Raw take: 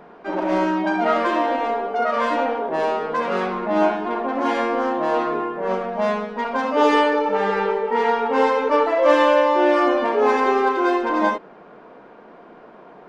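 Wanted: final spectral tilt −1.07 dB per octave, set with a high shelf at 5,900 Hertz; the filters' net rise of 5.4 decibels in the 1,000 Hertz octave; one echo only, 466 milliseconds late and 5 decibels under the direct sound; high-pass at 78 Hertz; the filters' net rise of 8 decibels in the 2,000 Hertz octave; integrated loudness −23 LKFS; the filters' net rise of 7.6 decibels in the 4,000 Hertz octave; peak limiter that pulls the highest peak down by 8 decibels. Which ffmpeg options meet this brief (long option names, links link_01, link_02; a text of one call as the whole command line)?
ffmpeg -i in.wav -af "highpass=78,equalizer=frequency=1000:width_type=o:gain=4.5,equalizer=frequency=2000:width_type=o:gain=7,equalizer=frequency=4000:width_type=o:gain=5,highshelf=frequency=5900:gain=6,alimiter=limit=-8dB:level=0:latency=1,aecho=1:1:466:0.562,volume=-6.5dB" out.wav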